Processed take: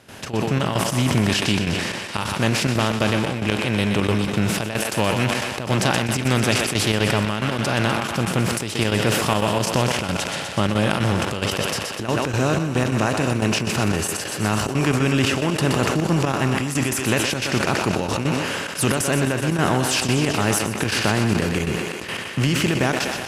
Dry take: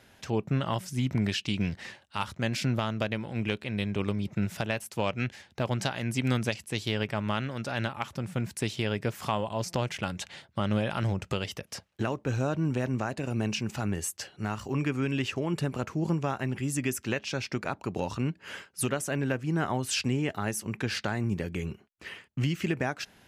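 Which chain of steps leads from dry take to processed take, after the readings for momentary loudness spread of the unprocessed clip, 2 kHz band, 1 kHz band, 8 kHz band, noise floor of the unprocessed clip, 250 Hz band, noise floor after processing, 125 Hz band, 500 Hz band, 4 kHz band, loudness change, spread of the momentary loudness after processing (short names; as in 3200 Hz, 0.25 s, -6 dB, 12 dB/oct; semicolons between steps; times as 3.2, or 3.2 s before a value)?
6 LU, +12.0 dB, +11.0 dB, +12.5 dB, -61 dBFS, +9.0 dB, -30 dBFS, +8.5 dB, +10.0 dB, +12.5 dB, +10.0 dB, 4 LU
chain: per-bin compression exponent 0.6; on a send: thinning echo 0.124 s, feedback 72%, high-pass 270 Hz, level -7 dB; on the sum: AGC gain up to 5 dB; step gate ".xx.xxx..x.xxxxx" 180 bpm -12 dB; in parallel at -10 dB: soft clip -21 dBFS, distortion -8 dB; on the sum: sustainer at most 33 dB/s; gain -1 dB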